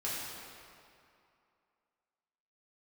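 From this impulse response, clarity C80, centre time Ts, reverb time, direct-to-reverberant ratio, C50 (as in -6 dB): -0.5 dB, 0.141 s, 2.5 s, -8.5 dB, -2.0 dB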